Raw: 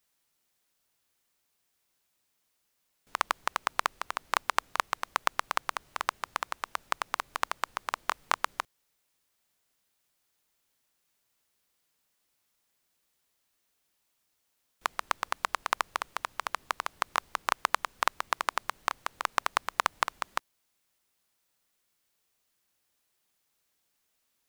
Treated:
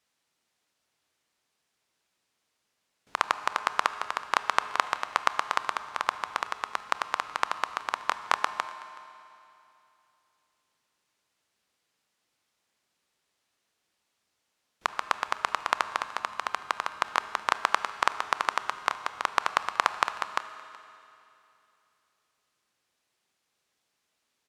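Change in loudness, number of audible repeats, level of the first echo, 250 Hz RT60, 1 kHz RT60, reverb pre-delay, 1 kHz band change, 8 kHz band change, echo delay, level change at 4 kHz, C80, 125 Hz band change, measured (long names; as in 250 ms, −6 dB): +2.5 dB, 1, −22.5 dB, 2.9 s, 2.9 s, 25 ms, +3.0 dB, −1.5 dB, 374 ms, +2.0 dB, 12.5 dB, can't be measured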